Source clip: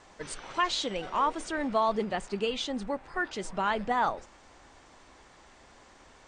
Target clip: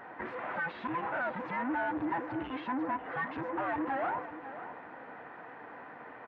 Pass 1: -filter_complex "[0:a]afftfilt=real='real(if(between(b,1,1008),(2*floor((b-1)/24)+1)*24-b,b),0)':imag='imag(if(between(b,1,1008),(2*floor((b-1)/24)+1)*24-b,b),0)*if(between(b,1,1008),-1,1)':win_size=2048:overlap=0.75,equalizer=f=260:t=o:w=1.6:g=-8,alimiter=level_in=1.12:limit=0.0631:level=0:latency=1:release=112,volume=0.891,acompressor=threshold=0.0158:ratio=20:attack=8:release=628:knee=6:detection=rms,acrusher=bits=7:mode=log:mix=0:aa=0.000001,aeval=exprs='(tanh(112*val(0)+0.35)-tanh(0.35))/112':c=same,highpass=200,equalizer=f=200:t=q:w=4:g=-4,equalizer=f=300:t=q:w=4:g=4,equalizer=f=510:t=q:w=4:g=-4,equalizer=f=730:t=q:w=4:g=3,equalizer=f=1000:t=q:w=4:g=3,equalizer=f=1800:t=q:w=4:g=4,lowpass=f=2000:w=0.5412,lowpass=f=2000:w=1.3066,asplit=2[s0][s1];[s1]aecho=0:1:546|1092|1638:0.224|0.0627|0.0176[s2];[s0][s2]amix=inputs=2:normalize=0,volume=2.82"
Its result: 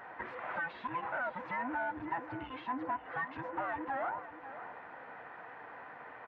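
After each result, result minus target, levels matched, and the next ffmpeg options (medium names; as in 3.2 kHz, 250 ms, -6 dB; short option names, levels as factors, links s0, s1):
compression: peak gain reduction +9 dB; 250 Hz band -3.5 dB
-filter_complex "[0:a]afftfilt=real='real(if(between(b,1,1008),(2*floor((b-1)/24)+1)*24-b,b),0)':imag='imag(if(between(b,1,1008),(2*floor((b-1)/24)+1)*24-b,b),0)*if(between(b,1,1008),-1,1)':win_size=2048:overlap=0.75,equalizer=f=260:t=o:w=1.6:g=-8,alimiter=level_in=1.12:limit=0.0631:level=0:latency=1:release=112,volume=0.891,acrusher=bits=7:mode=log:mix=0:aa=0.000001,aeval=exprs='(tanh(112*val(0)+0.35)-tanh(0.35))/112':c=same,highpass=200,equalizer=f=200:t=q:w=4:g=-4,equalizer=f=300:t=q:w=4:g=4,equalizer=f=510:t=q:w=4:g=-4,equalizer=f=730:t=q:w=4:g=3,equalizer=f=1000:t=q:w=4:g=3,equalizer=f=1800:t=q:w=4:g=4,lowpass=f=2000:w=0.5412,lowpass=f=2000:w=1.3066,asplit=2[s0][s1];[s1]aecho=0:1:546|1092|1638:0.224|0.0627|0.0176[s2];[s0][s2]amix=inputs=2:normalize=0,volume=2.82"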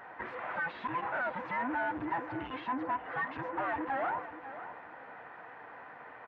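250 Hz band -3.5 dB
-filter_complex "[0:a]afftfilt=real='real(if(between(b,1,1008),(2*floor((b-1)/24)+1)*24-b,b),0)':imag='imag(if(between(b,1,1008),(2*floor((b-1)/24)+1)*24-b,b),0)*if(between(b,1,1008),-1,1)':win_size=2048:overlap=0.75,alimiter=level_in=1.12:limit=0.0631:level=0:latency=1:release=112,volume=0.891,acrusher=bits=7:mode=log:mix=0:aa=0.000001,aeval=exprs='(tanh(112*val(0)+0.35)-tanh(0.35))/112':c=same,highpass=200,equalizer=f=200:t=q:w=4:g=-4,equalizer=f=300:t=q:w=4:g=4,equalizer=f=510:t=q:w=4:g=-4,equalizer=f=730:t=q:w=4:g=3,equalizer=f=1000:t=q:w=4:g=3,equalizer=f=1800:t=q:w=4:g=4,lowpass=f=2000:w=0.5412,lowpass=f=2000:w=1.3066,asplit=2[s0][s1];[s1]aecho=0:1:546|1092|1638:0.224|0.0627|0.0176[s2];[s0][s2]amix=inputs=2:normalize=0,volume=2.82"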